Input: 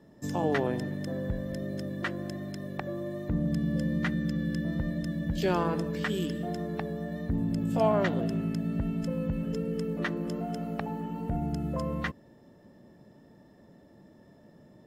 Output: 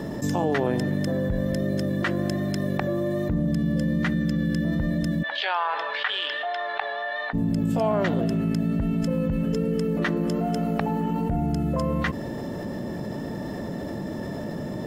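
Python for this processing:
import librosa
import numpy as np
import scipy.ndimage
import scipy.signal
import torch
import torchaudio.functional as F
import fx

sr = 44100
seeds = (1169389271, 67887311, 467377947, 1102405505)

y = fx.ellip_bandpass(x, sr, low_hz=770.0, high_hz=3700.0, order=3, stop_db=70, at=(5.22, 7.33), fade=0.02)
y = fx.env_flatten(y, sr, amount_pct=70)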